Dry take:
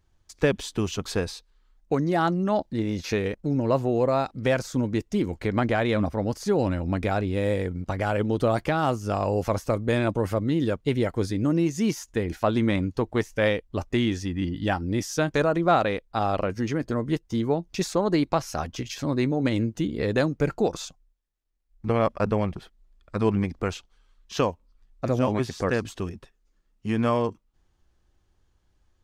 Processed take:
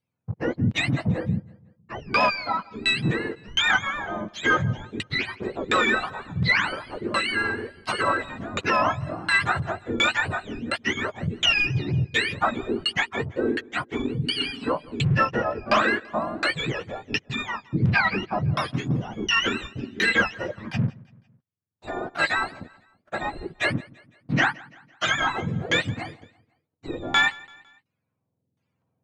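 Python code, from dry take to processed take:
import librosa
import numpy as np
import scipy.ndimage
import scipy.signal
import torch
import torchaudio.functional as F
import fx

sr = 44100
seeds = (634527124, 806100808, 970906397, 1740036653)

y = fx.octave_mirror(x, sr, pivot_hz=910.0)
y = fx.recorder_agc(y, sr, target_db=-20.0, rise_db_per_s=5.3, max_gain_db=30)
y = fx.high_shelf(y, sr, hz=2600.0, db=11.5)
y = fx.leveller(y, sr, passes=3)
y = fx.filter_lfo_lowpass(y, sr, shape='saw_down', hz=1.4, low_hz=310.0, high_hz=3200.0, q=1.2)
y = fx.echo_feedback(y, sr, ms=168, feedback_pct=47, wet_db=-23)
y = y * librosa.db_to_amplitude(-5.5)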